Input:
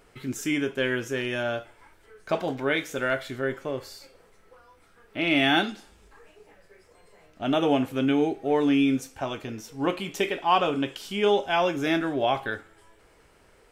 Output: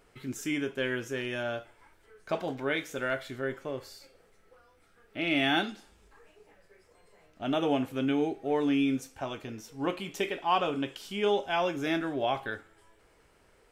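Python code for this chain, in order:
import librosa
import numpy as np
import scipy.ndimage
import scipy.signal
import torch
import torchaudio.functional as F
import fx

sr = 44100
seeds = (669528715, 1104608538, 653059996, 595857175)

y = fx.peak_eq(x, sr, hz=1000.0, db=-7.5, octaves=0.21, at=(3.91, 5.39))
y = y * librosa.db_to_amplitude(-5.0)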